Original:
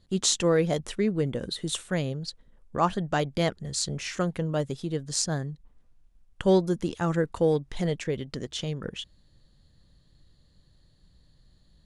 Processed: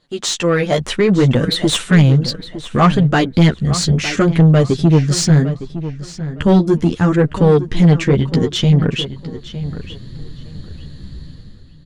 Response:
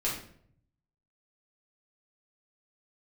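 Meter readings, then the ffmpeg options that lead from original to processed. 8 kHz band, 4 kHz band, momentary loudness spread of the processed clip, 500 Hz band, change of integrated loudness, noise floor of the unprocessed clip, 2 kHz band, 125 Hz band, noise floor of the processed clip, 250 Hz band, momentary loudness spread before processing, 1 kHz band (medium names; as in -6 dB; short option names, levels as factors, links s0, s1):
+6.5 dB, +11.5 dB, 16 LU, +10.0 dB, +14.0 dB, -62 dBFS, +14.0 dB, +18.5 dB, -38 dBFS, +15.5 dB, 11 LU, +10.5 dB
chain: -filter_complex "[0:a]asubboost=boost=10:cutoff=220,dynaudnorm=f=140:g=9:m=5.62,flanger=delay=6.3:depth=9.1:regen=1:speed=0.68:shape=triangular,asplit=2[s0][s1];[s1]highpass=f=720:p=1,volume=11.2,asoftclip=type=tanh:threshold=0.841[s2];[s0][s2]amix=inputs=2:normalize=0,lowpass=f=2700:p=1,volume=0.501,asplit=2[s3][s4];[s4]adelay=910,lowpass=f=4200:p=1,volume=0.224,asplit=2[s5][s6];[s6]adelay=910,lowpass=f=4200:p=1,volume=0.23,asplit=2[s7][s8];[s8]adelay=910,lowpass=f=4200:p=1,volume=0.23[s9];[s3][s5][s7][s9]amix=inputs=4:normalize=0"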